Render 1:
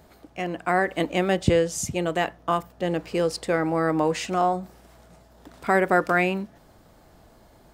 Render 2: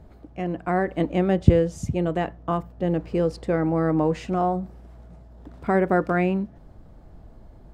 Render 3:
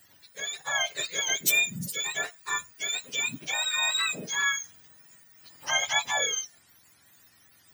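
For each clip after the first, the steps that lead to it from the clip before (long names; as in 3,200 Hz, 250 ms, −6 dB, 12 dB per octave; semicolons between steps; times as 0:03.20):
spectral tilt −3.5 dB per octave; level −3.5 dB
frequency axis turned over on the octave scale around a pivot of 1,100 Hz; level −2 dB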